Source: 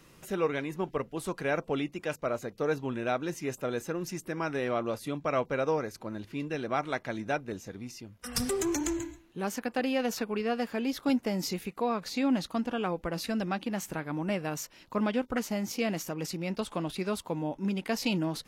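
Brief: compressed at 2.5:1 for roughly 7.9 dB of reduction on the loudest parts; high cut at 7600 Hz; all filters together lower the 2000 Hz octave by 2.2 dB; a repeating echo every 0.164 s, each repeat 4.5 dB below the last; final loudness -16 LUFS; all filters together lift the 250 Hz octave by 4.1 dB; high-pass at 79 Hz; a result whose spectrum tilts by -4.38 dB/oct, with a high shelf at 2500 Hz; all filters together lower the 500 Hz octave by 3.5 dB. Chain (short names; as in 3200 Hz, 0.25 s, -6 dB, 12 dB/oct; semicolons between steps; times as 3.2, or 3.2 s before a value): HPF 79 Hz; LPF 7600 Hz; bell 250 Hz +6.5 dB; bell 500 Hz -6.5 dB; bell 2000 Hz -7 dB; high shelf 2500 Hz +8.5 dB; compressor 2.5:1, threshold -30 dBFS; feedback echo 0.164 s, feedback 60%, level -4.5 dB; gain +16 dB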